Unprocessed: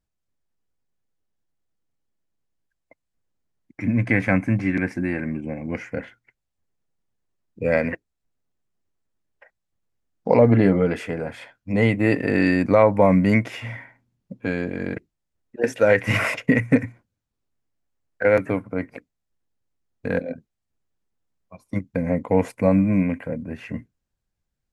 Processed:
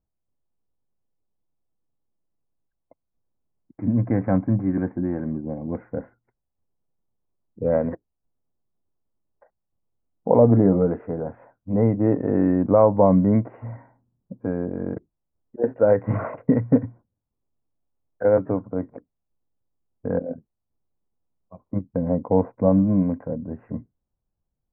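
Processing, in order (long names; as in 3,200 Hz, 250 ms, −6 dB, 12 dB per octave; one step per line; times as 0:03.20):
inverse Chebyshev low-pass filter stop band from 3,700 Hz, stop band 60 dB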